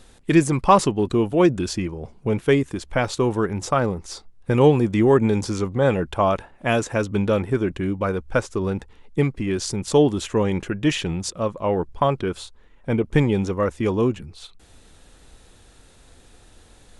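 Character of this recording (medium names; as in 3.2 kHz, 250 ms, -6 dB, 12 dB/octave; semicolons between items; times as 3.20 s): noise floor -52 dBFS; spectral tilt -6.0 dB/octave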